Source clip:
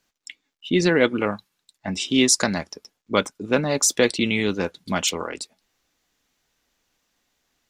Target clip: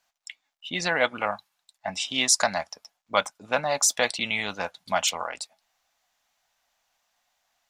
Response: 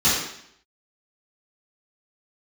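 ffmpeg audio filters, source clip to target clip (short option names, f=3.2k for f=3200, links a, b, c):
-af "lowshelf=f=520:t=q:w=3:g=-10,volume=-2dB"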